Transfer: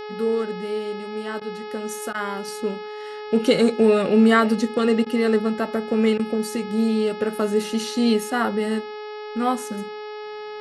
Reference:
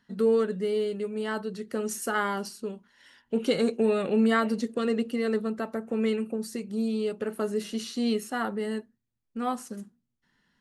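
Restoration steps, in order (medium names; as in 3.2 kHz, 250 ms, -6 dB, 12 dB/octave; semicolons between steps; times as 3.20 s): de-hum 423.1 Hz, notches 13; interpolate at 1.40/2.13/5.05/6.18 s, 12 ms; gain correction -7.5 dB, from 2.48 s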